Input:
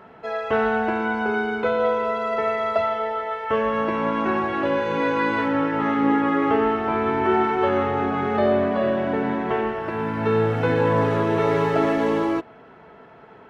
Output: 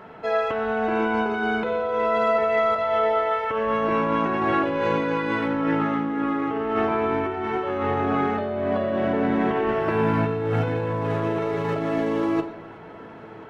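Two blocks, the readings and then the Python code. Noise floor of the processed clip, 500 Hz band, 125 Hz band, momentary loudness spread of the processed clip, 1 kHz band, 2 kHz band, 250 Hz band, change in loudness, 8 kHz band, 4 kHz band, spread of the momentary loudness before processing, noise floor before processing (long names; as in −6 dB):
−41 dBFS, −1.5 dB, −0.5 dB, 5 LU, −1.5 dB, −2.0 dB, −1.5 dB, −1.5 dB, can't be measured, −1.5 dB, 5 LU, −47 dBFS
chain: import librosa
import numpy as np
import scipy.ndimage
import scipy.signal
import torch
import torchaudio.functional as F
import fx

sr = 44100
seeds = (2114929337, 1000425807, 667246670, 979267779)

p1 = fx.over_compress(x, sr, threshold_db=-25.0, ratio=-1.0)
p2 = p1 + fx.echo_feedback(p1, sr, ms=1037, feedback_pct=54, wet_db=-23.5, dry=0)
y = fx.room_shoebox(p2, sr, seeds[0], volume_m3=490.0, walls='mixed', distance_m=0.53)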